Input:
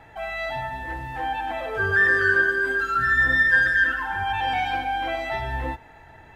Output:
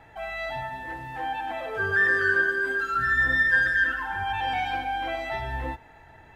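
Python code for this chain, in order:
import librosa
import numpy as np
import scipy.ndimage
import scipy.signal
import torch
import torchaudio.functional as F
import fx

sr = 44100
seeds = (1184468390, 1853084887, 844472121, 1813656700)

y = fx.peak_eq(x, sr, hz=61.0, db=-10.5, octaves=0.8, at=(0.63, 2.93))
y = y * librosa.db_to_amplitude(-3.0)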